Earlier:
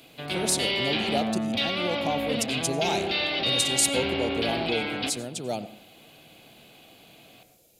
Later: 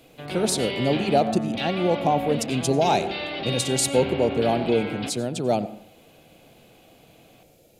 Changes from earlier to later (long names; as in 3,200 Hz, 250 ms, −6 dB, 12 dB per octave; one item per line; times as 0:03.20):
speech +9.0 dB
master: add high-shelf EQ 3,000 Hz −12 dB